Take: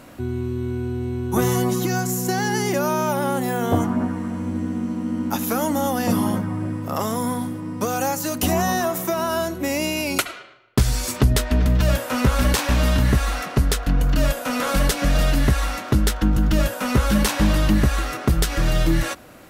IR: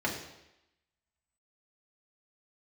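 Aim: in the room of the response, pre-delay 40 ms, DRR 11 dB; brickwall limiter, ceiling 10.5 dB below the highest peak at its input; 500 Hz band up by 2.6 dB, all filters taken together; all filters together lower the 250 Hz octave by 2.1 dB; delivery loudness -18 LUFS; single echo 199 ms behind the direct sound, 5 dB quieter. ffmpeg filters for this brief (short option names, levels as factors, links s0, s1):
-filter_complex "[0:a]equalizer=f=250:t=o:g=-4,equalizer=f=500:t=o:g=4.5,alimiter=limit=0.15:level=0:latency=1,aecho=1:1:199:0.562,asplit=2[s0][s1];[1:a]atrim=start_sample=2205,adelay=40[s2];[s1][s2]afir=irnorm=-1:irlink=0,volume=0.106[s3];[s0][s3]amix=inputs=2:normalize=0,volume=2.24"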